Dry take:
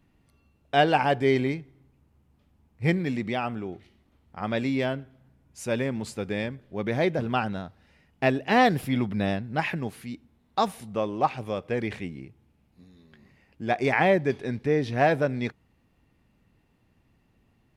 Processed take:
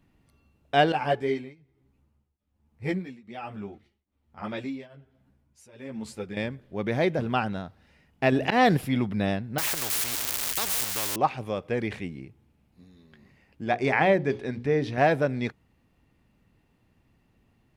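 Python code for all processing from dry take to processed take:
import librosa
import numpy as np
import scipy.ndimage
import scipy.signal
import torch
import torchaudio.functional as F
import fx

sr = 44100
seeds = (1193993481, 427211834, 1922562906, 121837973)

y = fx.chain(x, sr, fx.tremolo_shape(shape='triangle', hz=1.2, depth_pct=95),
    fx.ensemble(), at=(0.92, 6.37))
y = fx.chain(y, sr, fx.auto_swell(attack_ms=127.0),
    fx.env_flatten(amount_pct=50), at=(8.32, 8.77))
y = fx.chain(y, sr, fx.crossing_spikes(level_db=-27.5),
    fx.peak_eq(hz=200.0, db=-13.0, octaves=0.78),
    fx.spectral_comp(ratio=4.0), at=(9.58, 11.16))
y = fx.chain(y, sr, fx.high_shelf(hz=9200.0, db=-7.5),
    fx.hum_notches(base_hz=60, count=9), at=(13.64, 14.98))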